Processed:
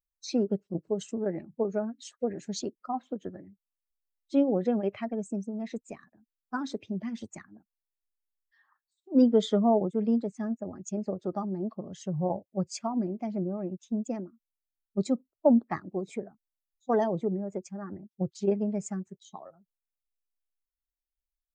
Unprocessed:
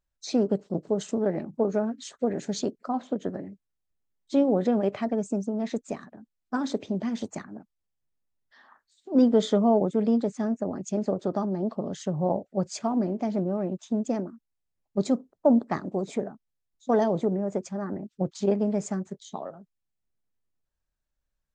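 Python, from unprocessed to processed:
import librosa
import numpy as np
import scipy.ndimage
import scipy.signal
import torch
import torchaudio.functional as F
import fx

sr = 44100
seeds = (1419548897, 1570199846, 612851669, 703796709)

y = fx.bin_expand(x, sr, power=1.5)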